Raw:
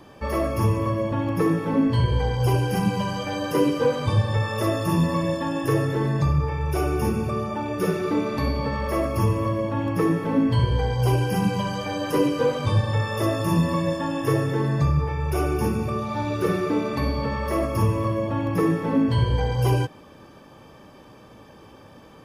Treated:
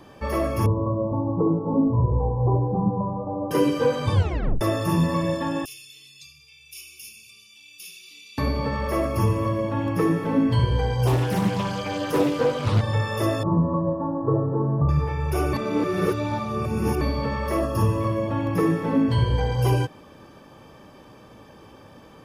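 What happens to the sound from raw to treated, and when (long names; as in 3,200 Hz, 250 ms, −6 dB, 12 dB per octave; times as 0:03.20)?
0:00.66–0:03.51: Butterworth low-pass 1,100 Hz 72 dB per octave
0:04.14: tape stop 0.47 s
0:05.65–0:08.38: elliptic high-pass filter 2,600 Hz
0:11.07–0:12.81: highs frequency-modulated by the lows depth 0.53 ms
0:13.43–0:14.89: Butterworth low-pass 1,200 Hz 48 dB per octave
0:15.53–0:17.01: reverse
0:17.60–0:18.01: Butterworth band-reject 2,200 Hz, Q 6.6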